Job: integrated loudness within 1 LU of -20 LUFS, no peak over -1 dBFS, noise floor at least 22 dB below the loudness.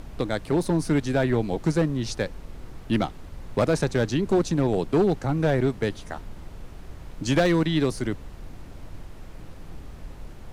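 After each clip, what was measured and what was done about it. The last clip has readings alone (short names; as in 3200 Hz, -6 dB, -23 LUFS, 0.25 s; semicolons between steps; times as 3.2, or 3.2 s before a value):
clipped 1.0%; flat tops at -14.5 dBFS; noise floor -42 dBFS; noise floor target -47 dBFS; loudness -24.5 LUFS; peak -14.5 dBFS; loudness target -20.0 LUFS
-> clip repair -14.5 dBFS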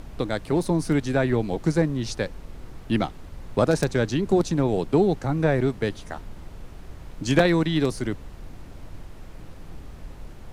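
clipped 0.0%; noise floor -42 dBFS; noise floor target -46 dBFS
-> noise print and reduce 6 dB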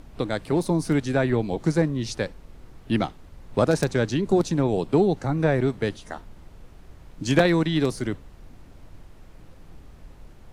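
noise floor -48 dBFS; loudness -24.0 LUFS; peak -5.5 dBFS; loudness target -20.0 LUFS
-> gain +4 dB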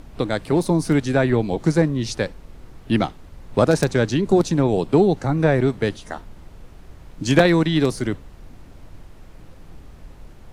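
loudness -20.0 LUFS; peak -1.5 dBFS; noise floor -44 dBFS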